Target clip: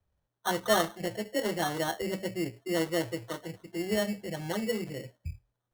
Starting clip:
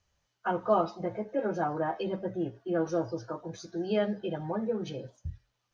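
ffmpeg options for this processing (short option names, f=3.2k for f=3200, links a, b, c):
-filter_complex "[0:a]asettb=1/sr,asplit=3[a][b][c];[a]atrim=end=3.954[d];[b]atrim=start=3.95:end=4.39,asetpts=PTS-STARTPTS,afade=t=in:d=0.004:c=qsin,afade=t=out:st=0.436:d=0.004:c=qsin,equalizer=f=380:t=o:w=0.61:g=-6.5[e];[c]atrim=start=4.386[f];[d][e]acrossfade=d=0.004:c1=hsin:c2=qsin[g];[g][f]acrossfade=d=0.004:c1=qsin:c2=hsin,acrossover=split=110[h][i];[i]adynamicsmooth=sensitivity=5.5:basefreq=1.2k[j];[h][j]amix=inputs=2:normalize=0,acrusher=samples=18:mix=1:aa=0.000001"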